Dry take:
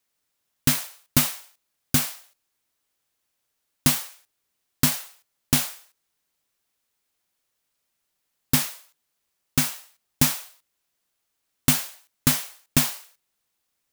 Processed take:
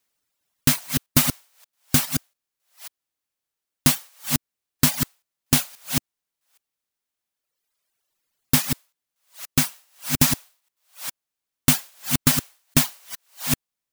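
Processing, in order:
delay that plays each chunk backwards 411 ms, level −4.5 dB
reverb reduction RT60 1.9 s
level +2 dB

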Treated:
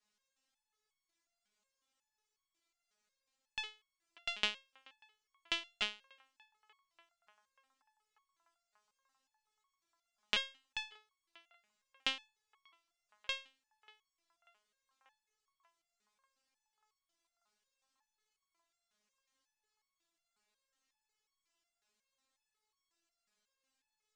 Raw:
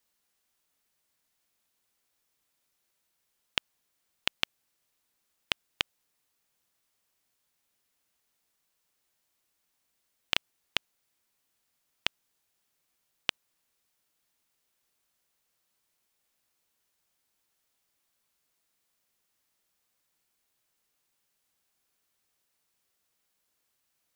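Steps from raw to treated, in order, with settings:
low-pass filter 7,800 Hz 24 dB per octave
on a send: feedback echo with a band-pass in the loop 589 ms, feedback 79%, band-pass 1,000 Hz, level −20.5 dB
on the sum: step-sequenced resonator 5.5 Hz 210–1,100 Hz
level +10.5 dB

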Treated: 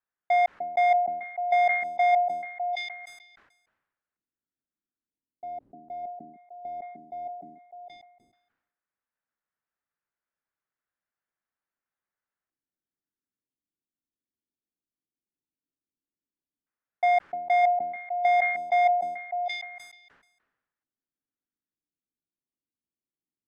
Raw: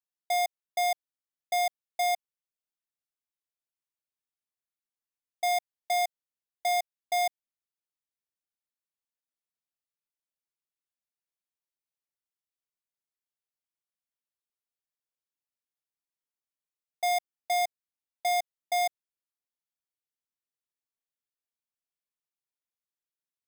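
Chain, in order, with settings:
auto-filter low-pass square 0.12 Hz 300–1,600 Hz
echo through a band-pass that steps 302 ms, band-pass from 230 Hz, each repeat 1.4 octaves, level −4.5 dB
level that may fall only so fast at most 57 dB per second
level +4 dB

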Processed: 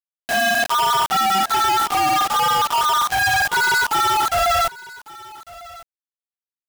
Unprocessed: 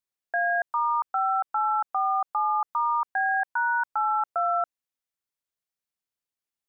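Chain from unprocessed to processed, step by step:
random phases in long frames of 100 ms
log-companded quantiser 2 bits
single-tap delay 1,150 ms −20.5 dB
level +8 dB

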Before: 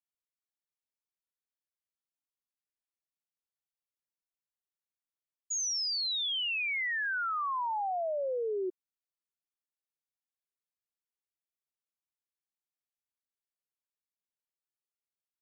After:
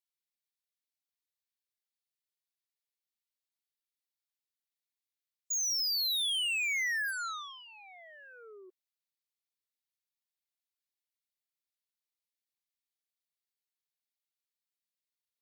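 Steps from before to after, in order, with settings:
first difference
noise reduction from a noise print of the clip's start 7 dB
octave-band graphic EQ 250/500/2,000/4,000 Hz −6/+10/+12/+10 dB
harmonic generator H 7 −9 dB, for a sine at −33 dBFS

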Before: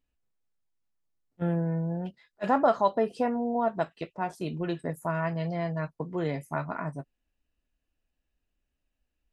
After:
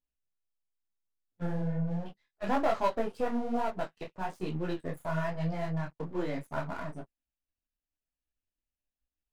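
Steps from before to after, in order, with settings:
gain on one half-wave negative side −7 dB
leveller curve on the samples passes 2
micro pitch shift up and down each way 38 cents
level −4 dB

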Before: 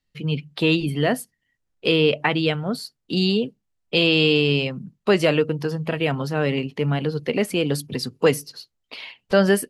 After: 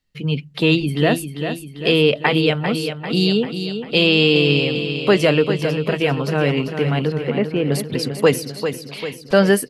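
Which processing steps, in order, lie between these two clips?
0:07.12–0:07.72: high-frequency loss of the air 490 metres
on a send: repeating echo 395 ms, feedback 54%, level −8.5 dB
on the sum: level +3 dB

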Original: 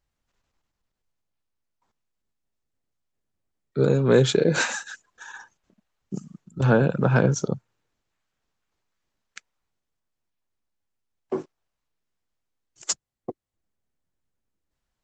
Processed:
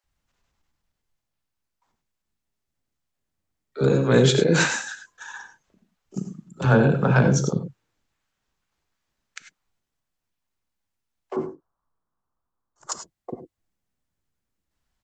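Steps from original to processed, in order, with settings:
0:11.36–0:12.92: high shelf with overshoot 1,700 Hz −13.5 dB, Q 3
multiband delay without the direct sound highs, lows 40 ms, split 470 Hz
reverb whose tail is shaped and stops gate 120 ms rising, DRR 8 dB
level +2.5 dB

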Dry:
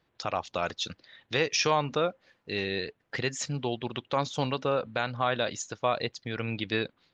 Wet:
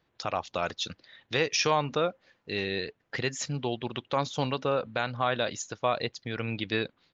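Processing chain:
downsampling to 16,000 Hz

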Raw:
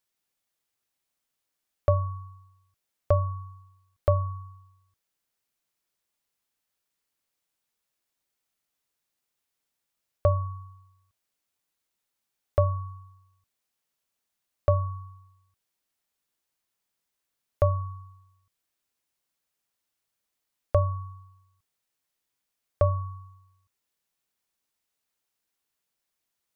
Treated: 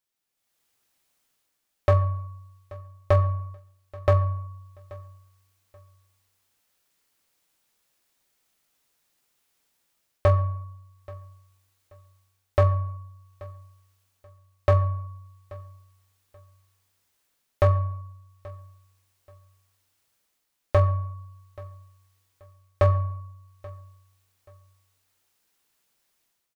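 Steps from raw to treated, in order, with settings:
automatic gain control gain up to 13 dB
hard clipping −9.5 dBFS, distortion −13 dB
repeating echo 831 ms, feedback 26%, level −21.5 dB
on a send at −11.5 dB: convolution reverb RT60 0.70 s, pre-delay 13 ms
on the sum: level −3 dB

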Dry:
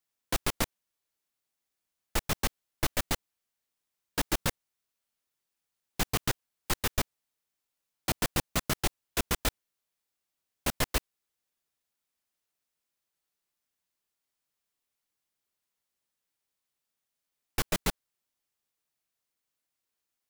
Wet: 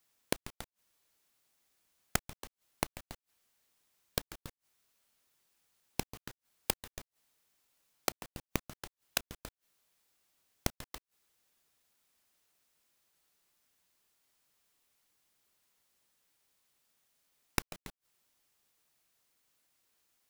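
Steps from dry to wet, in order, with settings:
gate with flip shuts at −20 dBFS, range −33 dB
level +9.5 dB

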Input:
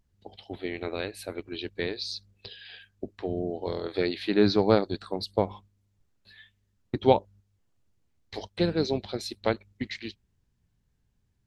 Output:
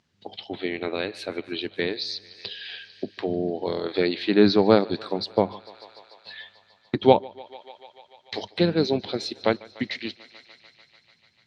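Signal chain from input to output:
Chebyshev band-pass filter 160–4,300 Hz, order 2
feedback echo with a high-pass in the loop 147 ms, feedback 79%, high-pass 270 Hz, level −23 dB
one half of a high-frequency compander encoder only
level +5 dB

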